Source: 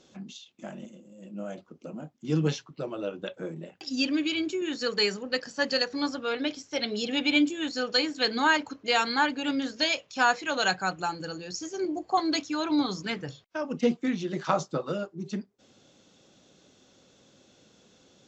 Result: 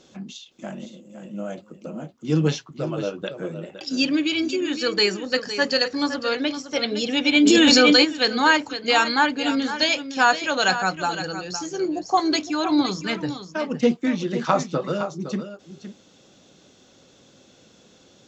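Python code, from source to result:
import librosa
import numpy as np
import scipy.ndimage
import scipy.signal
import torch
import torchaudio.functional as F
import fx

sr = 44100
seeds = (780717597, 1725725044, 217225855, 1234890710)

y = x + 10.0 ** (-11.0 / 20.0) * np.pad(x, (int(512 * sr / 1000.0), 0))[:len(x)]
y = fx.env_flatten(y, sr, amount_pct=100, at=(7.42, 8.03), fade=0.02)
y = y * 10.0 ** (5.5 / 20.0)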